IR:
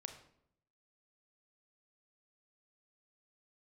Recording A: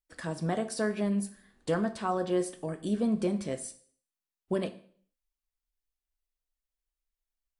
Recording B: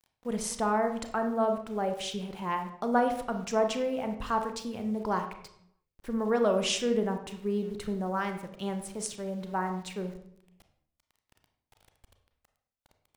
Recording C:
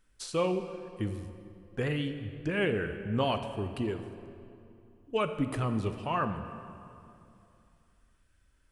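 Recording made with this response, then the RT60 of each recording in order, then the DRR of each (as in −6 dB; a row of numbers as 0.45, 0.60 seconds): B; 0.50, 0.70, 2.7 seconds; 9.0, 6.0, 7.5 decibels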